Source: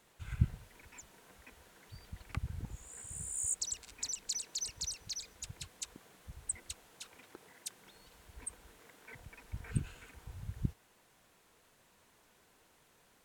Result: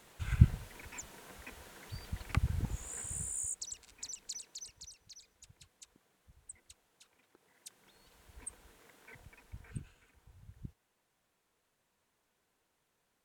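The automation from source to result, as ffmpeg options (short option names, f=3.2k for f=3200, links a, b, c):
-af "volume=18dB,afade=t=out:st=2.95:d=0.58:silence=0.237137,afade=t=out:st=4.28:d=0.61:silence=0.421697,afade=t=in:st=7.37:d=0.96:silence=0.281838,afade=t=out:st=9.05:d=0.89:silence=0.316228"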